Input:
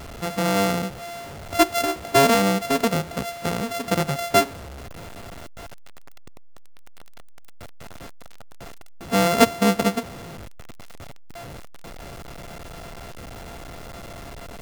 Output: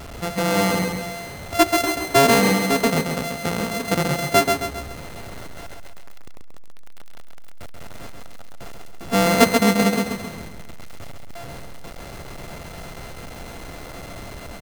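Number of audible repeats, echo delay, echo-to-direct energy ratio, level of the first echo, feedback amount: 5, 134 ms, -3.5 dB, -4.5 dB, 45%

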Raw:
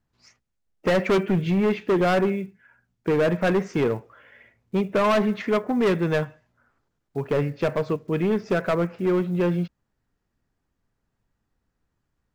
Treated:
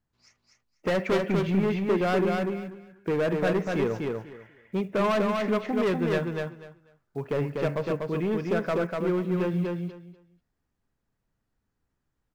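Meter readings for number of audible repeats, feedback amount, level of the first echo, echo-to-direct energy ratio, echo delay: 3, 19%, -3.5 dB, -3.5 dB, 245 ms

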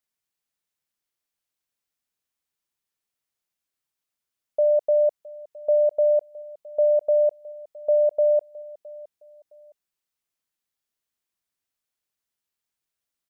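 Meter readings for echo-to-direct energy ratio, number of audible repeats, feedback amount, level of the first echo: -20.5 dB, 2, 30%, -21.0 dB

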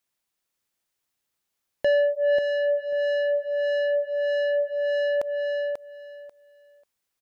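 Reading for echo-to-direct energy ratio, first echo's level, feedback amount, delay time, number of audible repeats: -6.0 dB, -6.0 dB, 18%, 540 ms, 2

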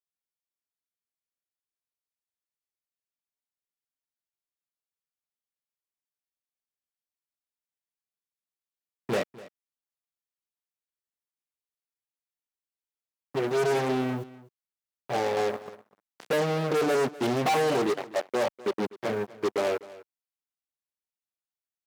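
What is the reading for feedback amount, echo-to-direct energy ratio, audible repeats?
no regular repeats, -19.0 dB, 1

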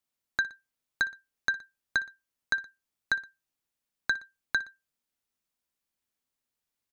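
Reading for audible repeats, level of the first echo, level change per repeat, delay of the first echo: 2, -19.0 dB, -5.5 dB, 60 ms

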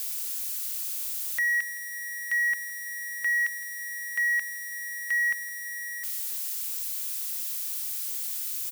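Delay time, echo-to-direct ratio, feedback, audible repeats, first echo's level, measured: 164 ms, -17.5 dB, 47%, 3, -18.5 dB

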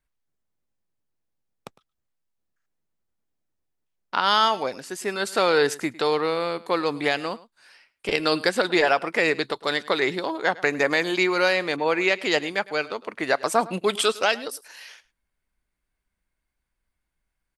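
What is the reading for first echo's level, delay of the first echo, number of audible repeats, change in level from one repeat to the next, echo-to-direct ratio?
-20.0 dB, 106 ms, 1, no regular repeats, -20.0 dB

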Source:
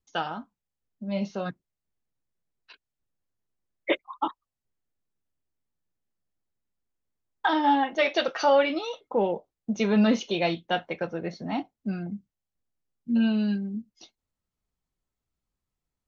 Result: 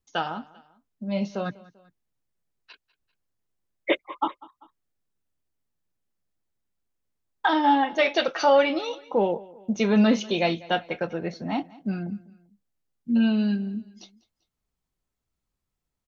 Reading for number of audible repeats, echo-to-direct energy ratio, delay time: 2, -20.5 dB, 196 ms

